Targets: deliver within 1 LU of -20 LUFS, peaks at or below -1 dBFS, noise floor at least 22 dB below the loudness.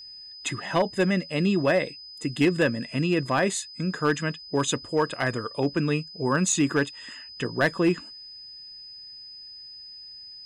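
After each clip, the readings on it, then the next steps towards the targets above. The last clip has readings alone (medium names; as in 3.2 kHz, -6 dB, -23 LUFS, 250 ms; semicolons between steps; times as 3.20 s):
clipped samples 0.3%; clipping level -14.5 dBFS; steady tone 5 kHz; tone level -41 dBFS; loudness -25.5 LUFS; peak level -14.5 dBFS; loudness target -20.0 LUFS
-> clip repair -14.5 dBFS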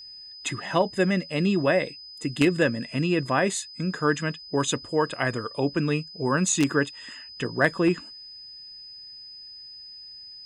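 clipped samples 0.0%; steady tone 5 kHz; tone level -41 dBFS
-> band-stop 5 kHz, Q 30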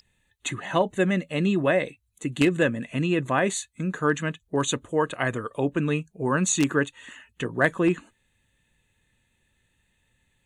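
steady tone not found; loudness -25.5 LUFS; peak level -5.5 dBFS; loudness target -20.0 LUFS
-> trim +5.5 dB; peak limiter -1 dBFS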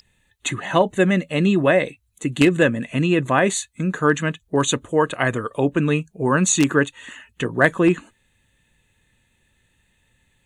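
loudness -20.0 LUFS; peak level -1.0 dBFS; noise floor -66 dBFS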